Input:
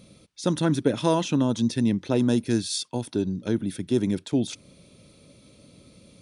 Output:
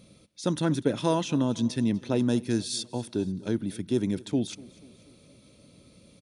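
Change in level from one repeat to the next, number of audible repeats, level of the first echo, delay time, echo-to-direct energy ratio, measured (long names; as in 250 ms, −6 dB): −5.5 dB, 3, −21.5 dB, 244 ms, −20.0 dB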